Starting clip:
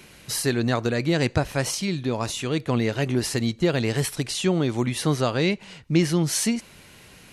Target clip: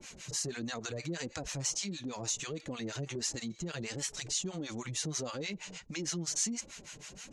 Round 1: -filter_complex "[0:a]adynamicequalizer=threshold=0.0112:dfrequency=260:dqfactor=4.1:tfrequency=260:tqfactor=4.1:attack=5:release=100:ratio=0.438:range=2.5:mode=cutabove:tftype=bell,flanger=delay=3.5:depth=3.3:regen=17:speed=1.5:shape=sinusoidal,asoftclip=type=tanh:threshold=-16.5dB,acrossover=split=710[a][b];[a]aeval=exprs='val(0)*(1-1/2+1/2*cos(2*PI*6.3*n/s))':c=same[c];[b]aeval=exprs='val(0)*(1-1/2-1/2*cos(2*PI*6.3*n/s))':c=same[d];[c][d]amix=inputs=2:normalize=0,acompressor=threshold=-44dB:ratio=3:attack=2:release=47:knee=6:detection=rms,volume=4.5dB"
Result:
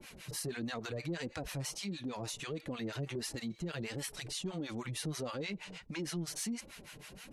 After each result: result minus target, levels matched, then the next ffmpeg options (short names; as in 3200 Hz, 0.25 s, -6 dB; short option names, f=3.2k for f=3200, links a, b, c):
soft clip: distortion +14 dB; 8000 Hz band -5.5 dB
-filter_complex "[0:a]adynamicequalizer=threshold=0.0112:dfrequency=260:dqfactor=4.1:tfrequency=260:tqfactor=4.1:attack=5:release=100:ratio=0.438:range=2.5:mode=cutabove:tftype=bell,flanger=delay=3.5:depth=3.3:regen=17:speed=1.5:shape=sinusoidal,asoftclip=type=tanh:threshold=-8dB,acrossover=split=710[a][b];[a]aeval=exprs='val(0)*(1-1/2+1/2*cos(2*PI*6.3*n/s))':c=same[c];[b]aeval=exprs='val(0)*(1-1/2-1/2*cos(2*PI*6.3*n/s))':c=same[d];[c][d]amix=inputs=2:normalize=0,acompressor=threshold=-44dB:ratio=3:attack=2:release=47:knee=6:detection=rms,volume=4.5dB"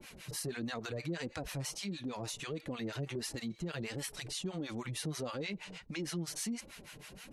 8000 Hz band -6.0 dB
-filter_complex "[0:a]adynamicequalizer=threshold=0.0112:dfrequency=260:dqfactor=4.1:tfrequency=260:tqfactor=4.1:attack=5:release=100:ratio=0.438:range=2.5:mode=cutabove:tftype=bell,flanger=delay=3.5:depth=3.3:regen=17:speed=1.5:shape=sinusoidal,asoftclip=type=tanh:threshold=-8dB,acrossover=split=710[a][b];[a]aeval=exprs='val(0)*(1-1/2+1/2*cos(2*PI*6.3*n/s))':c=same[c];[b]aeval=exprs='val(0)*(1-1/2-1/2*cos(2*PI*6.3*n/s))':c=same[d];[c][d]amix=inputs=2:normalize=0,acompressor=threshold=-44dB:ratio=3:attack=2:release=47:knee=6:detection=rms,lowpass=f=6.8k:t=q:w=4.9,volume=4.5dB"